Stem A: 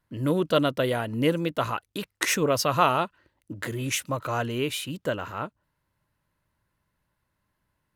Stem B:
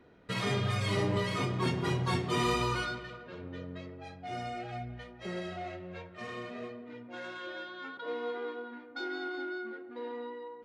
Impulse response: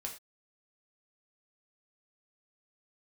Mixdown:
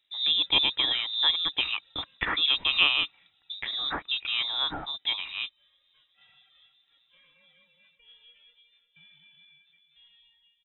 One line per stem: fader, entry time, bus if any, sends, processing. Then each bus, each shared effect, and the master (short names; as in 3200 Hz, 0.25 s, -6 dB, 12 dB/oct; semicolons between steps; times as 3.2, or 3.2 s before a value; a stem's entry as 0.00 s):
-1.5 dB, 0.00 s, no send, no echo send, dry
-18.5 dB, 0.00 s, no send, echo send -14 dB, reverb removal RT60 0.73 s; auto duck -14 dB, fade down 0.60 s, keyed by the first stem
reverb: off
echo: feedback echo 0.364 s, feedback 48%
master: inverted band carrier 3800 Hz; bell 300 Hz +7 dB 0.22 oct